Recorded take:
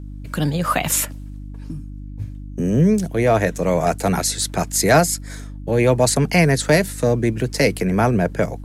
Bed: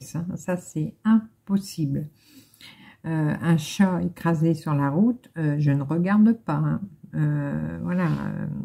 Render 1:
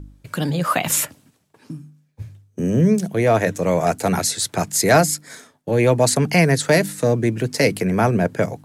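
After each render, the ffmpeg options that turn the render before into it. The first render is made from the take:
-af "bandreject=f=50:t=h:w=4,bandreject=f=100:t=h:w=4,bandreject=f=150:t=h:w=4,bandreject=f=200:t=h:w=4,bandreject=f=250:t=h:w=4,bandreject=f=300:t=h:w=4"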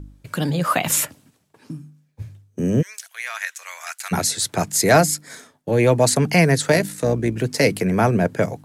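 -filter_complex "[0:a]asplit=3[a][b][c];[a]afade=t=out:st=2.81:d=0.02[d];[b]highpass=f=1.4k:w=0.5412,highpass=f=1.4k:w=1.3066,afade=t=in:st=2.81:d=0.02,afade=t=out:st=4.11:d=0.02[e];[c]afade=t=in:st=4.11:d=0.02[f];[d][e][f]amix=inputs=3:normalize=0,asettb=1/sr,asplit=3[g][h][i];[g]atrim=end=6.724[j];[h]atrim=start=6.72:end=7.36,asetpts=PTS-STARTPTS,afade=t=in:d=0.004:c=qsin,afade=t=out:st=0.636:d=0.004:c=qsin,tremolo=f=61:d=0.462[k];[i]atrim=start=7.356[l];[j][k]acrossfade=d=0.004:c1=hsin:c2=qsin[m];[m][l]acrossfade=d=0.004:c1=qsin:c2=hsin"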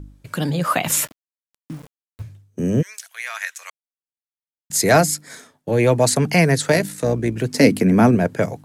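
-filter_complex "[0:a]asettb=1/sr,asplit=3[a][b][c];[a]atrim=end=1.044[d];[b]atrim=start=1.04:end=2.22,asetpts=PTS-STARTPTS,afade=t=in:d=0.004:c=qsin,afade=t=out:st=1.176:d=0.004:c=qsin,aeval=exprs='val(0)*gte(abs(val(0)),0.0126)':c=same[e];[c]atrim=start=2.216[f];[d][e]acrossfade=d=0.004:c1=hsin:c2=qsin[g];[g][f]acrossfade=d=0.004:c1=qsin:c2=hsin,asettb=1/sr,asplit=3[h][i][j];[h]atrim=end=7.544[k];[i]atrim=start=7.54:end=8.15,asetpts=PTS-STARTPTS,afade=t=in:d=0.004:c=qsin,afade=t=out:st=0.606:d=0.004:c=qsin,equalizer=f=250:w=2.2:g=12.5[l];[j]atrim=start=8.146[m];[k][l]acrossfade=d=0.004:c1=hsin:c2=qsin[n];[n][m]acrossfade=d=0.004:c1=qsin:c2=hsin,asplit=3[o][p][q];[o]atrim=end=3.7,asetpts=PTS-STARTPTS,afade=t=out:st=3.696:d=0.004:c=hsin[r];[p]atrim=start=3.7:end=4.7,asetpts=PTS-STARTPTS,volume=0[s];[q]atrim=start=4.7,asetpts=PTS-STARTPTS,afade=t=in:d=0.004:c=hsin[t];[r][s][t]concat=n=3:v=0:a=1"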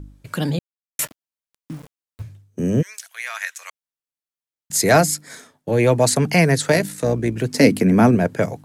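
-filter_complex "[0:a]asplit=3[a][b][c];[a]atrim=end=0.59,asetpts=PTS-STARTPTS,afade=t=out:st=0.586:d=0.004:c=hsin[d];[b]atrim=start=0.59:end=0.99,asetpts=PTS-STARTPTS,volume=0[e];[c]atrim=start=0.99,asetpts=PTS-STARTPTS,afade=t=in:d=0.004:c=hsin[f];[d][e][f]concat=n=3:v=0:a=1"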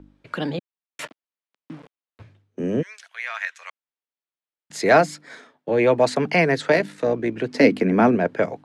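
-filter_complex "[0:a]lowpass=f=11k:w=0.5412,lowpass=f=11k:w=1.3066,acrossover=split=220 4100:gain=0.178 1 0.0891[a][b][c];[a][b][c]amix=inputs=3:normalize=0"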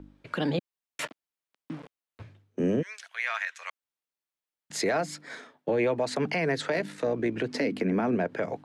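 -af "acompressor=threshold=-20dB:ratio=4,alimiter=limit=-18dB:level=0:latency=1:release=74"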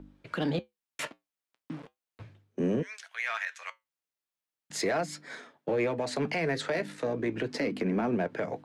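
-filter_complex "[0:a]asplit=2[a][b];[b]asoftclip=type=hard:threshold=-26.5dB,volume=-8dB[c];[a][c]amix=inputs=2:normalize=0,flanger=delay=5.1:depth=3.6:regen=-74:speed=0.38:shape=triangular"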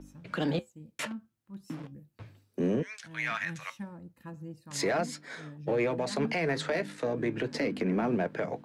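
-filter_complex "[1:a]volume=-22dB[a];[0:a][a]amix=inputs=2:normalize=0"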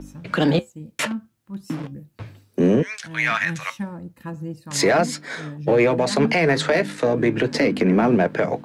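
-af "volume=11.5dB"

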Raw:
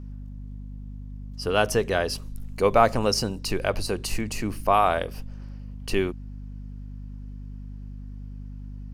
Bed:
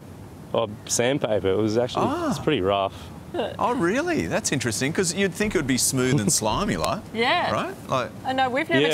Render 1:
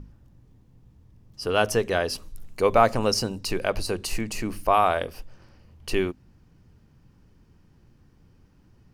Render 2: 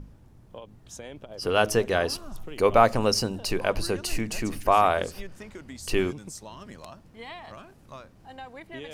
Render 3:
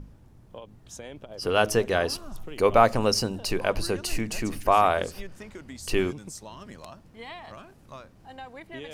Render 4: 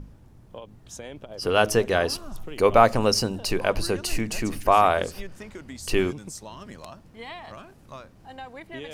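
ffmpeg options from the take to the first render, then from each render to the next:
-af "bandreject=f=50:t=h:w=6,bandreject=f=100:t=h:w=6,bandreject=f=150:t=h:w=6,bandreject=f=200:t=h:w=6,bandreject=f=250:t=h:w=6"
-filter_complex "[1:a]volume=-20dB[a];[0:a][a]amix=inputs=2:normalize=0"
-af anull
-af "volume=2dB"

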